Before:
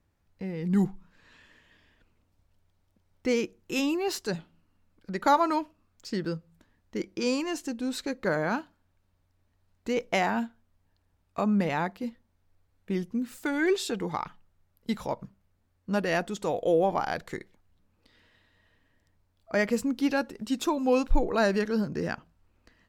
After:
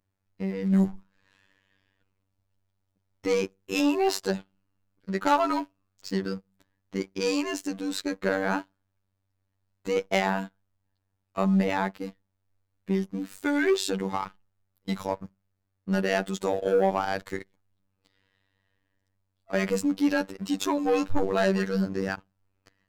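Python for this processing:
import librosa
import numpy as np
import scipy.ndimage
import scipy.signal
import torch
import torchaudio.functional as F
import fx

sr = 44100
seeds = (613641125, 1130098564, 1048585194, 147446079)

y = fx.peak_eq(x, sr, hz=710.0, db=8.0, octaves=1.2, at=(3.8, 4.31))
y = fx.leveller(y, sr, passes=2)
y = fx.robotise(y, sr, hz=96.3)
y = y * 10.0 ** (-2.5 / 20.0)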